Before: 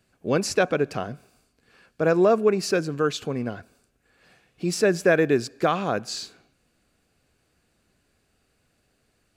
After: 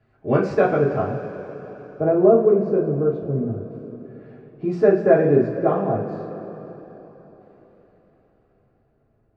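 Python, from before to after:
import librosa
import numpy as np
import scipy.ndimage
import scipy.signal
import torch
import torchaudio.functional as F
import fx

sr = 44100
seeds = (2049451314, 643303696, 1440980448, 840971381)

y = fx.filter_lfo_lowpass(x, sr, shape='saw_down', hz=0.27, low_hz=290.0, high_hz=1800.0, q=0.73)
y = fx.rev_double_slope(y, sr, seeds[0], early_s=0.29, late_s=4.1, knee_db=-18, drr_db=-6.0)
y = F.gain(torch.from_numpy(y), -1.0).numpy()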